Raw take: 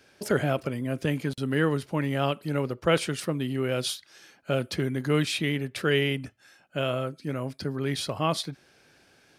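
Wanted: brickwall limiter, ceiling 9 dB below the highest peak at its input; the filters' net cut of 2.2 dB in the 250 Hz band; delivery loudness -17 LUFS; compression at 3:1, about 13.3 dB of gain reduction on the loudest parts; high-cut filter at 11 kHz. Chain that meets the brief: low-pass 11 kHz; peaking EQ 250 Hz -3 dB; compression 3:1, threshold -38 dBFS; trim +25.5 dB; peak limiter -5.5 dBFS

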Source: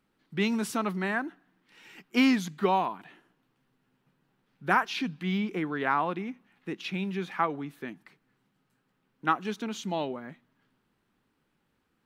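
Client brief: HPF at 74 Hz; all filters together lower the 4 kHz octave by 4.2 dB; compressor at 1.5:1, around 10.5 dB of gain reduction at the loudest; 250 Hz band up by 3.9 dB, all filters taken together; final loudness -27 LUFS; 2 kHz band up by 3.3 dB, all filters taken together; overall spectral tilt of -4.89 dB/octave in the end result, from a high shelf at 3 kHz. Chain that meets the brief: high-pass 74 Hz; peaking EQ 250 Hz +4.5 dB; peaking EQ 2 kHz +7 dB; treble shelf 3 kHz -3.5 dB; peaking EQ 4 kHz -7 dB; compression 1.5:1, threshold -45 dBFS; trim +9 dB

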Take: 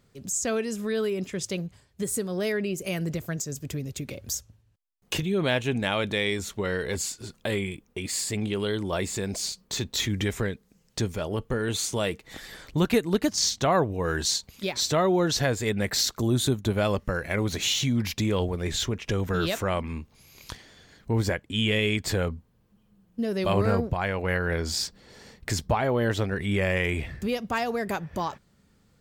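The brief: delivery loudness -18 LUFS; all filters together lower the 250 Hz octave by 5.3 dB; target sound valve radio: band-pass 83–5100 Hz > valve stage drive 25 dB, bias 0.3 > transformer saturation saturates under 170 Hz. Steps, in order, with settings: band-pass 83–5100 Hz; peaking EQ 250 Hz -7.5 dB; valve stage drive 25 dB, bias 0.3; transformer saturation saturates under 170 Hz; trim +16 dB

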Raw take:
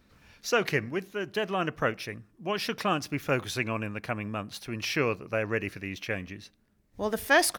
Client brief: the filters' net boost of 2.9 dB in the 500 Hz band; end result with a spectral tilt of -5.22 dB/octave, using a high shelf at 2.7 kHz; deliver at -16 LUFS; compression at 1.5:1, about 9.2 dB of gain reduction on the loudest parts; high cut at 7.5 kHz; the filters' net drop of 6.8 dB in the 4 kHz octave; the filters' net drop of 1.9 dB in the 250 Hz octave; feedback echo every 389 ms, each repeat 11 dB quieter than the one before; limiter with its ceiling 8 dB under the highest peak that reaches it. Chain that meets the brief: low-pass 7.5 kHz; peaking EQ 250 Hz -4.5 dB; peaking EQ 500 Hz +5 dB; treble shelf 2.7 kHz -5.5 dB; peaking EQ 4 kHz -4.5 dB; compression 1.5:1, threshold -43 dBFS; peak limiter -28 dBFS; feedback delay 389 ms, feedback 28%, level -11 dB; trim +24 dB

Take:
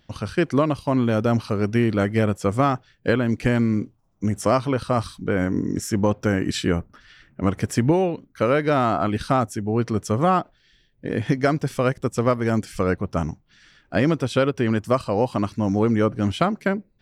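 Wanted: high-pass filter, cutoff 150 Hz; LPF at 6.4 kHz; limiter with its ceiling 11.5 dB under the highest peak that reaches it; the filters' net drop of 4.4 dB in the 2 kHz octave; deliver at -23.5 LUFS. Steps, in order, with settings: high-pass 150 Hz; low-pass 6.4 kHz; peaking EQ 2 kHz -6 dB; trim +5.5 dB; peak limiter -12 dBFS

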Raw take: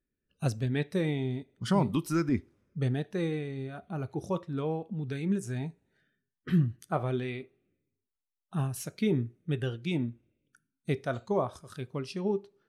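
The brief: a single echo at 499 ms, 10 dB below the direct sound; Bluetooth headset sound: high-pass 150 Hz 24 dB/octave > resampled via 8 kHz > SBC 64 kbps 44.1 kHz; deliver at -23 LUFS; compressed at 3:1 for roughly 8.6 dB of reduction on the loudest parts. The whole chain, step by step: compression 3:1, threshold -32 dBFS; high-pass 150 Hz 24 dB/octave; delay 499 ms -10 dB; resampled via 8 kHz; trim +15.5 dB; SBC 64 kbps 44.1 kHz

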